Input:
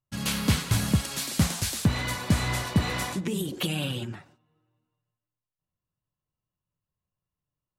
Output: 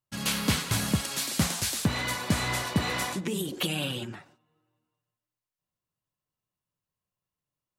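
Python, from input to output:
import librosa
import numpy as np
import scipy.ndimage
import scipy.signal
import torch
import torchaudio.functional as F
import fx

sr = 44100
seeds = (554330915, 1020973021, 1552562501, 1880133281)

y = fx.low_shelf(x, sr, hz=140.0, db=-10.5)
y = F.gain(torch.from_numpy(y), 1.0).numpy()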